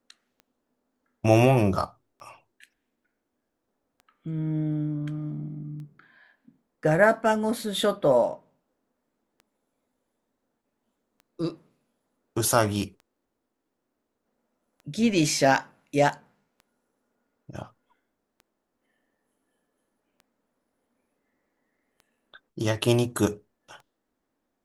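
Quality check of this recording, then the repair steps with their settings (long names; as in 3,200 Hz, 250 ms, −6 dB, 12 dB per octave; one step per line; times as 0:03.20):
scratch tick 33 1/3 rpm −34 dBFS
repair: click removal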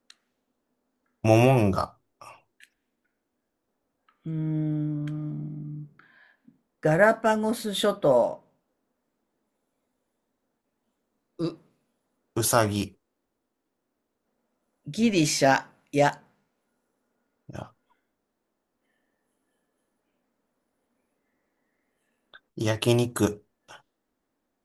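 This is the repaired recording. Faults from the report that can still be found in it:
none of them is left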